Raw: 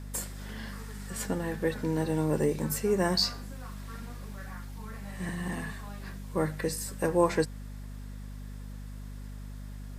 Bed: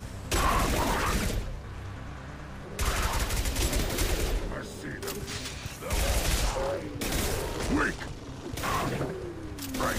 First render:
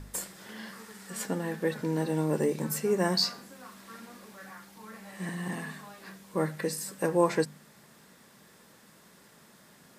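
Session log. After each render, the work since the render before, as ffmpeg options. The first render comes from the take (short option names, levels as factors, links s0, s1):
-af "bandreject=f=50:t=h:w=4,bandreject=f=100:t=h:w=4,bandreject=f=150:t=h:w=4,bandreject=f=200:t=h:w=4,bandreject=f=250:t=h:w=4"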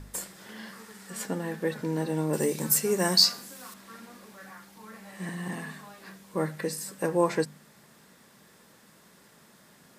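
-filter_complex "[0:a]asettb=1/sr,asplit=3[s0][s1][s2];[s0]atrim=end=2.334[s3];[s1]atrim=start=2.33:end=3.74,asetpts=PTS-STARTPTS,afade=t=in:d=0.004:c=qsin,afade=t=out:st=1.406:d=0.004:c=qsin,highshelf=f=3500:g=12[s4];[s2]atrim=start=3.736[s5];[s3][s4]acrossfade=d=0.004:c1=hsin:c2=qsin[s6];[s6][s5]acrossfade=d=0.004:c1=qsin:c2=hsin"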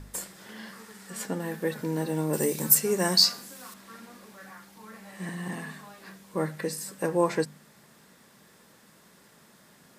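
-filter_complex "[0:a]asettb=1/sr,asplit=3[s0][s1][s2];[s0]atrim=end=1.404[s3];[s1]atrim=start=1.4:end=2.75,asetpts=PTS-STARTPTS,afade=t=in:d=0.004:c=qsin,afade=t=out:st=1.346:d=0.004:c=qsin,highshelf=f=12000:g=11.5[s4];[s2]atrim=start=2.746[s5];[s3][s4]acrossfade=d=0.004:c1=hsin:c2=qsin[s6];[s6][s5]acrossfade=d=0.004:c1=qsin:c2=hsin"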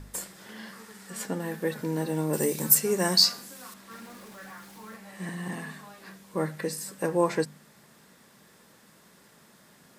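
-filter_complex "[0:a]asettb=1/sr,asplit=3[s0][s1][s2];[s0]atrim=end=3.914[s3];[s1]atrim=start=3.91:end=4.96,asetpts=PTS-STARTPTS,afade=t=in:d=0.004:c=qsin,afade=t=out:st=1.046:d=0.004:c=qsin,aeval=exprs='val(0)+0.5*0.00316*sgn(val(0))':c=same[s4];[s2]atrim=start=4.956[s5];[s3][s4]acrossfade=d=0.004:c1=hsin:c2=qsin[s6];[s6][s5]acrossfade=d=0.004:c1=qsin:c2=hsin"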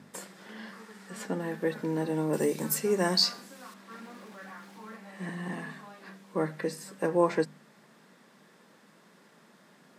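-af "highpass=f=160:w=0.5412,highpass=f=160:w=1.3066,aemphasis=mode=reproduction:type=50kf"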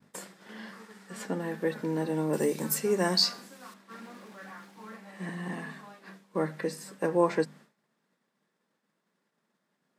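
-af "agate=range=0.0224:threshold=0.00501:ratio=3:detection=peak"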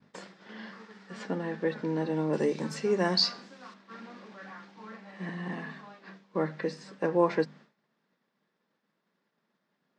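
-af "lowpass=f=5500:w=0.5412,lowpass=f=5500:w=1.3066"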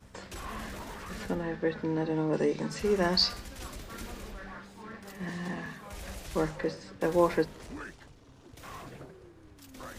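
-filter_complex "[1:a]volume=0.168[s0];[0:a][s0]amix=inputs=2:normalize=0"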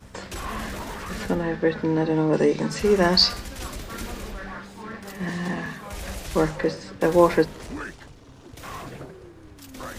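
-af "volume=2.51"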